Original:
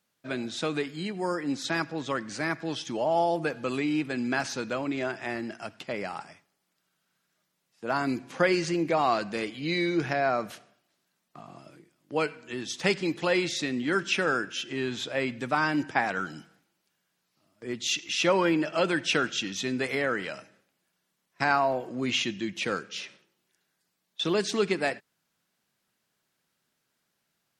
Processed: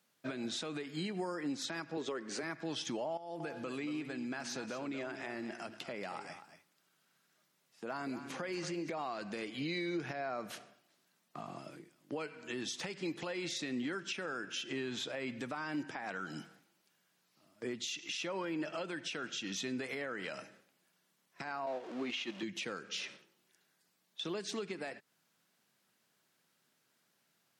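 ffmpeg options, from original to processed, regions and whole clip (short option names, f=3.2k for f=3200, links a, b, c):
-filter_complex "[0:a]asettb=1/sr,asplit=3[a][b][c];[a]atrim=end=1.974[d];[b]atrim=start=1.97:end=2.43,asetpts=PTS-STARTPTS,afade=t=in:d=0.004:c=qsin,afade=t=out:st=0.456:d=0.004:c=qsin,highpass=180,equalizer=f=410:t=o:w=0.35:g=13[e];[c]atrim=start=2.426[f];[d][e]acrossfade=d=0.004:c1=hsin:c2=qsin[g];[g][f]acrossfade=d=0.004:c1=qsin:c2=hsin,asettb=1/sr,asplit=3[h][i][j];[h]atrim=end=3.174[k];[i]atrim=start=3.17:end=8.89,asetpts=PTS-STARTPTS,afade=t=in:d=0.004:c=qsin,afade=t=out:st=5.716:d=0.004:c=qsin,acompressor=threshold=-43dB:ratio=2.5:attack=3.2:release=140:knee=1:detection=peak,aecho=1:1:231:0.282,atrim=end_sample=252252[l];[j]atrim=start=8.886[m];[k][l]acrossfade=d=0.004:c1=hsin:c2=qsin[n];[n][m]acrossfade=d=0.004:c1=qsin:c2=hsin,asettb=1/sr,asplit=3[o][p][q];[o]atrim=end=21.664[r];[p]atrim=start=21.66:end=22.43,asetpts=PTS-STARTPTS,afade=t=in:d=0.004:c=qsin,afade=t=out:st=0.766:d=0.004:c=qsin,aeval=exprs='val(0)+0.5*0.02*sgn(val(0))':c=same,agate=range=-7dB:threshold=-28dB:ratio=16:release=100:detection=peak,highpass=260,lowpass=4.7k[s];[q]atrim=start=22.426[t];[r][s]acrossfade=d=0.004:c1=hsin:c2=qsin[u];[u][t]acrossfade=d=0.004:c1=qsin:c2=hsin,highpass=130,acompressor=threshold=-35dB:ratio=6,alimiter=level_in=7dB:limit=-24dB:level=0:latency=1:release=144,volume=-7dB,volume=1.5dB"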